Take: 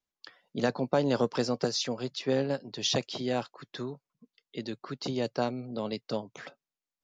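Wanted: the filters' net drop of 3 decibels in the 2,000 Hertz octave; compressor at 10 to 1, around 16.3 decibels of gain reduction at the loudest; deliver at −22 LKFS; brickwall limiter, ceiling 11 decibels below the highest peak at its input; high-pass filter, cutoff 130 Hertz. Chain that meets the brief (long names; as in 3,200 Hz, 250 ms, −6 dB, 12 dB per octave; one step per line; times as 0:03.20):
high-pass filter 130 Hz
parametric band 2,000 Hz −4 dB
downward compressor 10 to 1, threshold −39 dBFS
level +26.5 dB
brickwall limiter −11.5 dBFS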